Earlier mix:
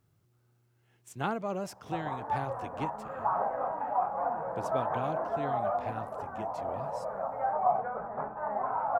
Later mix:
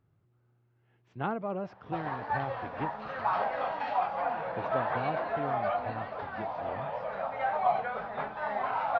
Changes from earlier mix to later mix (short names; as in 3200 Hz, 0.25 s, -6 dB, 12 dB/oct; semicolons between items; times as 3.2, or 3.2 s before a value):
background: remove LPF 1200 Hz 24 dB/oct; master: add Gaussian blur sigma 2.8 samples